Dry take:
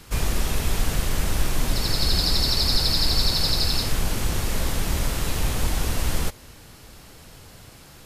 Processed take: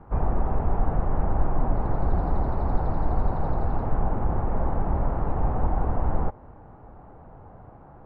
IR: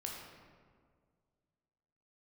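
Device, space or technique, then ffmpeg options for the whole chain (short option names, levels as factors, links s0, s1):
under water: -af "lowpass=f=1200:w=0.5412,lowpass=f=1200:w=1.3066,equalizer=f=780:t=o:w=0.56:g=8"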